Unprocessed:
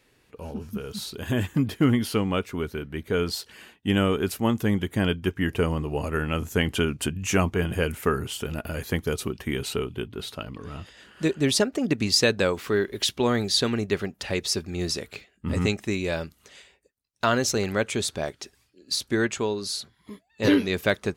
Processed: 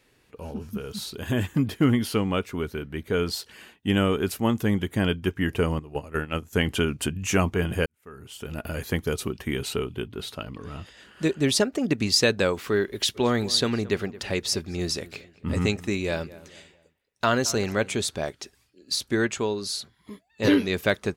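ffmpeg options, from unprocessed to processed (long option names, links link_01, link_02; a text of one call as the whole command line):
ffmpeg -i in.wav -filter_complex "[0:a]asettb=1/sr,asplit=3[link_01][link_02][link_03];[link_01]atrim=end=5.794[link_04];[link_02]atrim=start=5.79:end=6.53,asetpts=PTS-STARTPTS,afade=type=in:duration=0.004:curve=qsin,afade=type=out:start_time=0.736:duration=0.004:curve=qsin,agate=range=-13dB:threshold=-27dB:ratio=16:release=100:detection=peak[link_05];[link_03]atrim=start=6.526[link_06];[link_04][link_05]acrossfade=duration=0.004:curve1=hsin:curve2=qsin[link_07];[link_07][link_06]acrossfade=duration=0.004:curve1=qsin:curve2=hsin,asplit=3[link_08][link_09][link_10];[link_08]afade=type=out:start_time=13.14:duration=0.02[link_11];[link_09]asplit=2[link_12][link_13];[link_13]adelay=221,lowpass=frequency=2100:poles=1,volume=-18dB,asplit=2[link_14][link_15];[link_15]adelay=221,lowpass=frequency=2100:poles=1,volume=0.4,asplit=2[link_16][link_17];[link_17]adelay=221,lowpass=frequency=2100:poles=1,volume=0.4[link_18];[link_12][link_14][link_16][link_18]amix=inputs=4:normalize=0,afade=type=in:start_time=13.14:duration=0.02,afade=type=out:start_time=17.96:duration=0.02[link_19];[link_10]afade=type=in:start_time=17.96:duration=0.02[link_20];[link_11][link_19][link_20]amix=inputs=3:normalize=0,asplit=2[link_21][link_22];[link_21]atrim=end=7.86,asetpts=PTS-STARTPTS,afade=type=out:start_time=7.856:duration=0.004:curve=hsin[link_23];[link_22]atrim=start=7.86,asetpts=PTS-STARTPTS,afade=type=in:duration=0.79:curve=qua[link_24];[link_23][link_24]concat=n=2:v=0:a=1" out.wav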